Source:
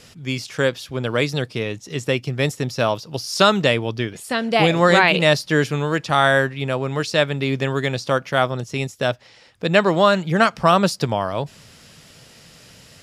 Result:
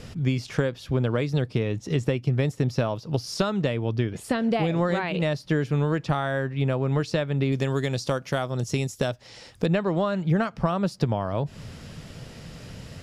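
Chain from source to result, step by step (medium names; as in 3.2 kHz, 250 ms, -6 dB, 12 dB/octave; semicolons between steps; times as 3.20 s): 7.52–9.66 s: tone controls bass -2 dB, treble +13 dB; compression 6:1, threshold -28 dBFS, peak gain reduction 17 dB; tilt EQ -2.5 dB/octave; trim +3 dB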